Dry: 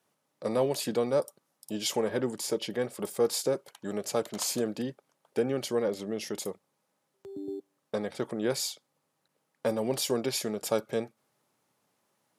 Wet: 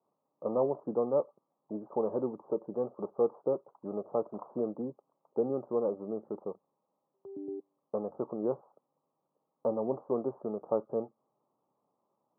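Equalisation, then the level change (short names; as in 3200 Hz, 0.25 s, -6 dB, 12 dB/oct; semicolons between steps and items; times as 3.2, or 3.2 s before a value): HPF 300 Hz 6 dB/oct; steep low-pass 1200 Hz 72 dB/oct; air absorption 460 m; +1.0 dB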